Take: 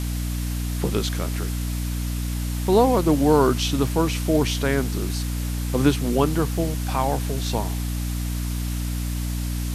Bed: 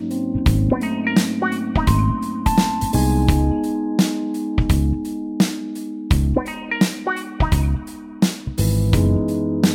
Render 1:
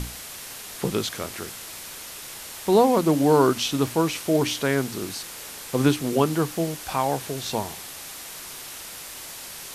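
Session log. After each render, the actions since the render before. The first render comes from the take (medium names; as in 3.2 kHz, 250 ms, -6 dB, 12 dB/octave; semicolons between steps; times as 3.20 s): hum notches 60/120/180/240/300 Hz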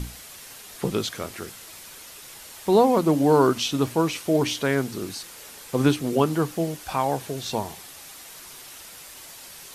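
noise reduction 6 dB, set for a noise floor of -39 dBFS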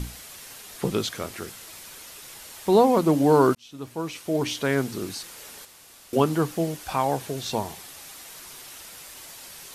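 3.55–4.81 s: fade in; 5.65–6.13 s: room tone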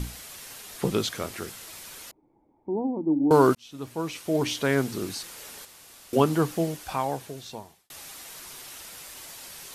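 2.11–3.31 s: cascade formant filter u; 6.53–7.90 s: fade out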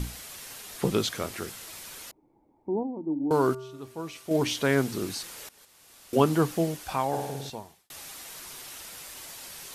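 2.83–4.31 s: feedback comb 130 Hz, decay 1.2 s, harmonics odd, mix 50%; 5.49–6.27 s: fade in, from -18.5 dB; 7.08–7.50 s: flutter echo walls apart 8.8 m, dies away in 0.9 s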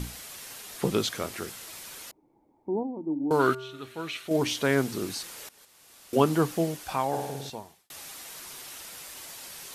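3.40–4.28 s: time-frequency box 1.2–4.4 kHz +10 dB; bass shelf 89 Hz -5.5 dB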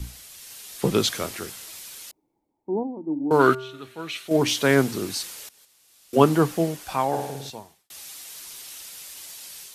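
level rider gain up to 3.5 dB; three bands expanded up and down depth 40%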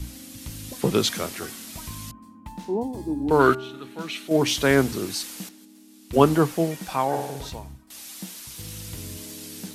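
add bed -22.5 dB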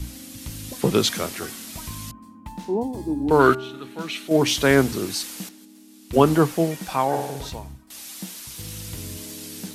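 trim +2 dB; peak limiter -3 dBFS, peak gain reduction 2.5 dB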